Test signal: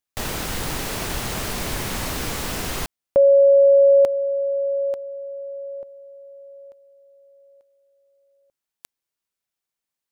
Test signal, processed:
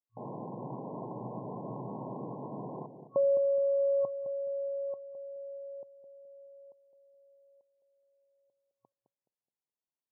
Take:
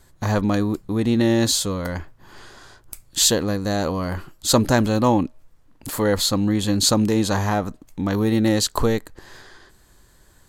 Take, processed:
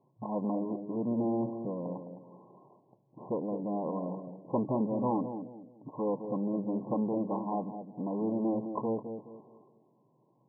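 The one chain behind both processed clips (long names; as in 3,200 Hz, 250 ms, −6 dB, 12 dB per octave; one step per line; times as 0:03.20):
high-frequency loss of the air 66 metres
asymmetric clip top −25.5 dBFS
on a send: bucket-brigade delay 211 ms, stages 1,024, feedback 34%, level −8 dB
on the sum: brick-wall band-pass 110–1,100 Hz
level −8 dB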